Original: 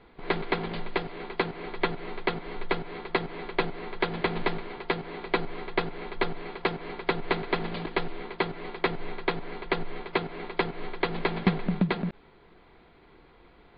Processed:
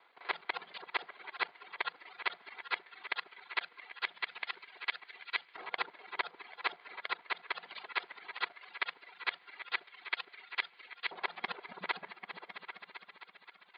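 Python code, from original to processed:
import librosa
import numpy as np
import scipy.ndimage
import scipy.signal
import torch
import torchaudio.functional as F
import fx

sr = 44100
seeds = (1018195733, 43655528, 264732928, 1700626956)

y = fx.local_reverse(x, sr, ms=41.0)
y = fx.echo_opening(y, sr, ms=264, hz=200, octaves=2, feedback_pct=70, wet_db=-6)
y = fx.filter_lfo_highpass(y, sr, shape='saw_up', hz=0.18, low_hz=900.0, high_hz=2000.0, q=0.88)
y = fx.rider(y, sr, range_db=3, speed_s=0.5)
y = fx.dereverb_blind(y, sr, rt60_s=1.1)
y = y * librosa.db_to_amplitude(-3.0)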